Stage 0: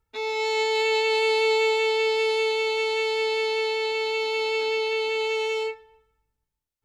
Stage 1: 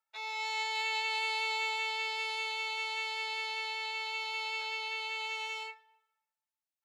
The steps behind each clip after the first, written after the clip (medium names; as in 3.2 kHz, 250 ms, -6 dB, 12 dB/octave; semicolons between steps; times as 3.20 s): elliptic high-pass 600 Hz, stop band 60 dB; trim -6.5 dB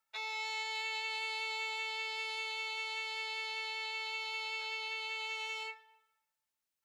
peaking EQ 790 Hz -3.5 dB 0.72 oct; compression 2.5:1, threshold -44 dBFS, peak gain reduction 9.5 dB; trim +4.5 dB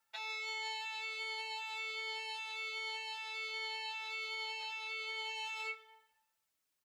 peak limiter -37.5 dBFS, peak gain reduction 9 dB; endless flanger 5.2 ms -1.3 Hz; trim +7.5 dB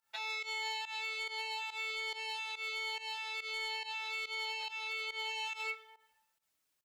volume shaper 141 bpm, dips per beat 1, -17 dB, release 115 ms; hard clipper -34.5 dBFS, distortion -26 dB; trim +3 dB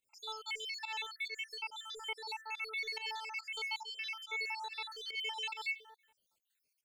random holes in the spectrogram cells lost 64%; trim +3 dB